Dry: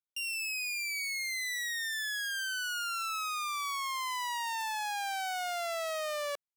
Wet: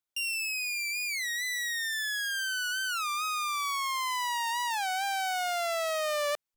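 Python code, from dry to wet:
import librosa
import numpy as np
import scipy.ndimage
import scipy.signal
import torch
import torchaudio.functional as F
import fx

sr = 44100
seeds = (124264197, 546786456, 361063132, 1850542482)

y = fx.rider(x, sr, range_db=10, speed_s=0.5)
y = fx.record_warp(y, sr, rpm=33.33, depth_cents=160.0)
y = F.gain(torch.from_numpy(y), 3.5).numpy()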